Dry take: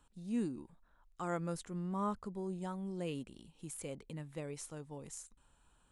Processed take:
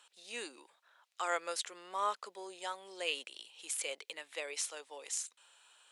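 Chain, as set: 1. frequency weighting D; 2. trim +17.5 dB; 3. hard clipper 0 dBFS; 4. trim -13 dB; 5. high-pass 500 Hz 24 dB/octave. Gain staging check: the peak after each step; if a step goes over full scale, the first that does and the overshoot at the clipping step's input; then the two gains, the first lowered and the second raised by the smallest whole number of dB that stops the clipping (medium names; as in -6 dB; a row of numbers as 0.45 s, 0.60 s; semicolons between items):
-23.5 dBFS, -6.0 dBFS, -6.0 dBFS, -19.0 dBFS, -19.5 dBFS; nothing clips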